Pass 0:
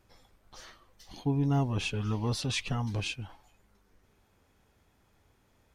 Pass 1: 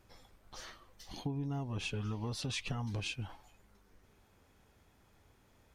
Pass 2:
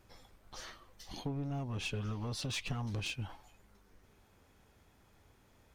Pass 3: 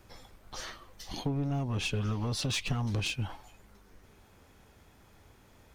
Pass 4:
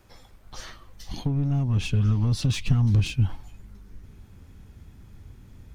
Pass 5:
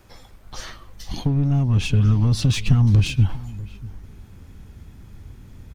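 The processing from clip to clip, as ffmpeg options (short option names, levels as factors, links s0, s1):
-af "acompressor=threshold=0.0178:ratio=12,volume=1.12"
-af "aeval=exprs='clip(val(0),-1,0.0168)':c=same,volume=1.12"
-filter_complex "[0:a]acrossover=split=380|3000[s0][s1][s2];[s1]acompressor=threshold=0.00708:ratio=6[s3];[s0][s3][s2]amix=inputs=3:normalize=0,volume=2.11"
-af "asubboost=boost=6.5:cutoff=240"
-filter_complex "[0:a]asplit=2[s0][s1];[s1]adelay=641.4,volume=0.112,highshelf=f=4000:g=-14.4[s2];[s0][s2]amix=inputs=2:normalize=0,volume=1.78"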